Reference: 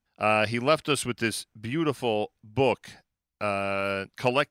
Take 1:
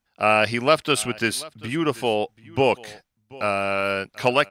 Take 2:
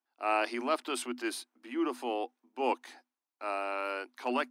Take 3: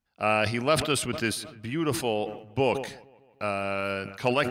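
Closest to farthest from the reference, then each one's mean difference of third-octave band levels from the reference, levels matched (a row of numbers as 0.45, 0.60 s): 1, 3, 2; 2.0, 3.5, 6.5 dB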